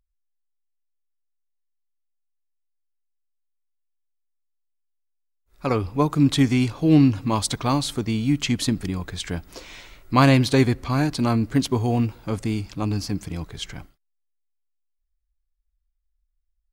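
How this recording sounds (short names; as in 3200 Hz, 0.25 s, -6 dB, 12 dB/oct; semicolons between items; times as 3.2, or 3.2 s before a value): noise floor -74 dBFS; spectral tilt -6.0 dB/oct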